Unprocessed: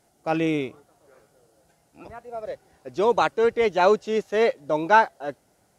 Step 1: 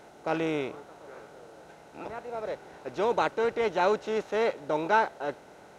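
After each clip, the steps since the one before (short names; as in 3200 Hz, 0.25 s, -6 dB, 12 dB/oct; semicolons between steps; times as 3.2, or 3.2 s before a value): per-bin compression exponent 0.6; gain -8.5 dB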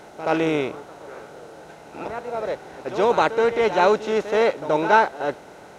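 pre-echo 77 ms -12.5 dB; gain +7.5 dB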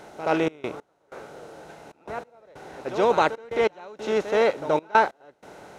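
step gate "xxx.x..xx" 94 bpm -24 dB; gain -1.5 dB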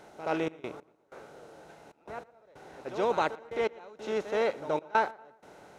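darkening echo 0.118 s, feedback 44%, low-pass 2900 Hz, level -22 dB; gain -7.5 dB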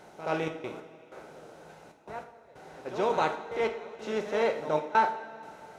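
two-slope reverb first 0.41 s, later 2.9 s, from -16 dB, DRR 4 dB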